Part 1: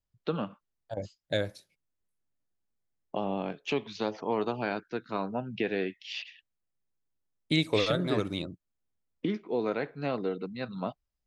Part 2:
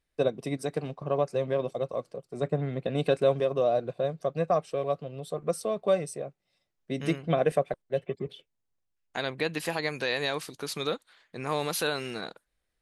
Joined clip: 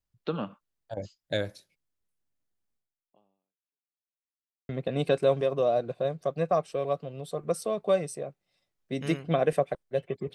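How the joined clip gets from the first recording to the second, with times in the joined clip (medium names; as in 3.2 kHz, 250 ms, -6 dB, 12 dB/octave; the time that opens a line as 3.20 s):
part 1
2.76–3.99 s: fade out exponential
3.99–4.69 s: mute
4.69 s: go over to part 2 from 2.68 s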